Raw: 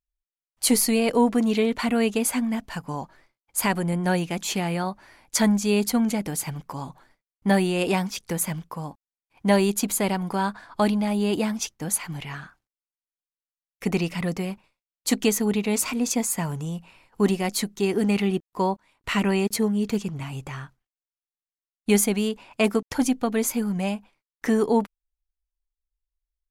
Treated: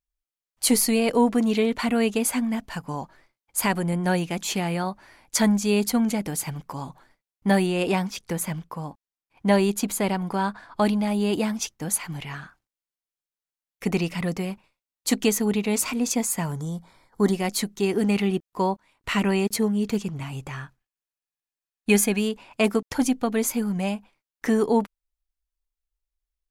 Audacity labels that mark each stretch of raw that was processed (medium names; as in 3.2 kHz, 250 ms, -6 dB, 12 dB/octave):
7.660000	10.850000	treble shelf 4.9 kHz -4.5 dB
16.520000	17.330000	Butterworth band-stop 2.7 kHz, Q 2.5
20.500000	22.190000	small resonant body resonances 1.7/2.5 kHz, height 8 dB -> 12 dB